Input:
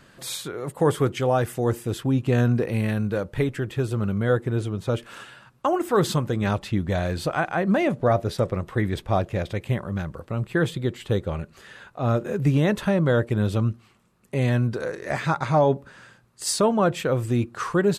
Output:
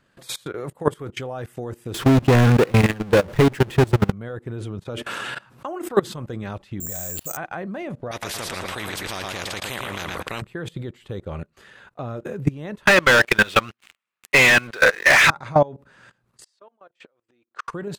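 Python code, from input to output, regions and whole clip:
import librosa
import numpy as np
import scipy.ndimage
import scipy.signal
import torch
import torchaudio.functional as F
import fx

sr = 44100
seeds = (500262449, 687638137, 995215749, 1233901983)

y = fx.chain(x, sr, fx.peak_eq(hz=65.0, db=-10.5, octaves=0.27),
    fx.power_curve(exponent=0.35), at=(1.94, 4.12))
y = fx.chain(y, sr, fx.highpass(hz=97.0, slope=6),
    fx.env_flatten(amount_pct=50), at=(4.85, 5.88))
y = fx.chain(y, sr, fx.level_steps(step_db=17),
    fx.resample_bad(factor=6, down='none', up='zero_stuff'),
    fx.transformer_sat(knee_hz=2000.0), at=(6.8, 7.37))
y = fx.chain(y, sr, fx.echo_feedback(ms=114, feedback_pct=34, wet_db=-9),
    fx.spectral_comp(ratio=4.0), at=(8.11, 10.42))
y = fx.chain(y, sr, fx.highpass(hz=1400.0, slope=6),
    fx.peak_eq(hz=2300.0, db=11.5, octaves=1.8),
    fx.leveller(passes=5), at=(12.87, 15.3))
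y = fx.chain(y, sr, fx.gate_flip(shuts_db=-22.0, range_db=-29),
    fx.bandpass_edges(low_hz=480.0, high_hz=5100.0), at=(16.44, 17.68))
y = fx.bass_treble(y, sr, bass_db=-1, treble_db=-3)
y = fx.level_steps(y, sr, step_db=17)
y = fx.transient(y, sr, attack_db=2, sustain_db=-6)
y = y * 10.0 ** (3.5 / 20.0)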